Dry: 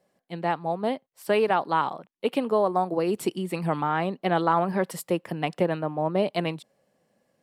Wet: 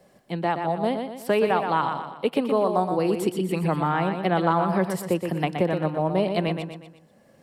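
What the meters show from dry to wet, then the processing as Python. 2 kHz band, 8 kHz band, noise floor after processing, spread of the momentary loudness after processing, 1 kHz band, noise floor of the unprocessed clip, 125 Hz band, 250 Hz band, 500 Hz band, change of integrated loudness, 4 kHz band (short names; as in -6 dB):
+1.0 dB, +0.5 dB, -58 dBFS, 7 LU, +1.0 dB, -75 dBFS, +4.5 dB, +3.5 dB, +1.5 dB, +2.0 dB, +1.5 dB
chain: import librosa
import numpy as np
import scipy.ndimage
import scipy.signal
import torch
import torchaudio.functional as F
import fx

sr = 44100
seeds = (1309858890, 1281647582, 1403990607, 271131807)

p1 = fx.low_shelf(x, sr, hz=120.0, db=9.0)
p2 = p1 + fx.echo_feedback(p1, sr, ms=121, feedback_pct=37, wet_db=-7, dry=0)
y = fx.band_squash(p2, sr, depth_pct=40)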